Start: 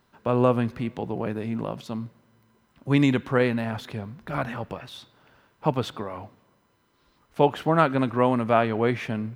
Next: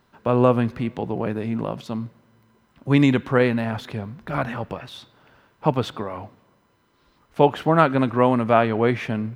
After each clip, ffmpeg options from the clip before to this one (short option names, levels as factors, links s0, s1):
-af "highshelf=f=5200:g=-4,volume=1.5"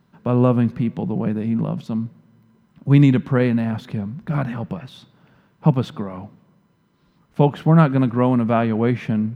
-af "equalizer=f=170:t=o:w=1.1:g=15,volume=0.631"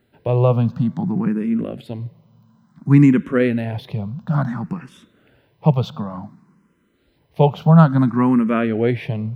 -filter_complex "[0:a]asplit=2[s0][s1];[s1]afreqshift=0.57[s2];[s0][s2]amix=inputs=2:normalize=1,volume=1.5"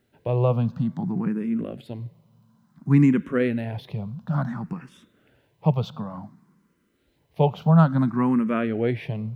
-af "acrusher=bits=11:mix=0:aa=0.000001,volume=0.531"